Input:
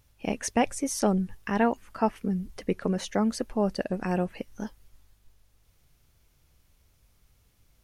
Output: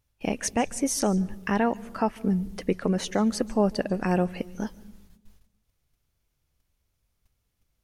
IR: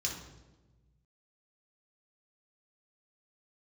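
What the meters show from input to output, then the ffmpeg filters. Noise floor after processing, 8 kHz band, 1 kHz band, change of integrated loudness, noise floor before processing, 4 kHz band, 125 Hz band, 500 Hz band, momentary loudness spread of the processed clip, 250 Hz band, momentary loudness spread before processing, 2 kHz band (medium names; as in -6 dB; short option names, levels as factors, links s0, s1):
-77 dBFS, +3.5 dB, +0.5 dB, +2.0 dB, -66 dBFS, +3.0 dB, +3.0 dB, +1.5 dB, 6 LU, +2.0 dB, 8 LU, +1.5 dB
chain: -filter_complex "[0:a]agate=range=0.178:threshold=0.00141:ratio=16:detection=peak,alimiter=limit=0.158:level=0:latency=1:release=246,asplit=2[s0][s1];[1:a]atrim=start_sample=2205,asetrate=52920,aresample=44100,adelay=141[s2];[s1][s2]afir=irnorm=-1:irlink=0,volume=0.075[s3];[s0][s3]amix=inputs=2:normalize=0,volume=1.58"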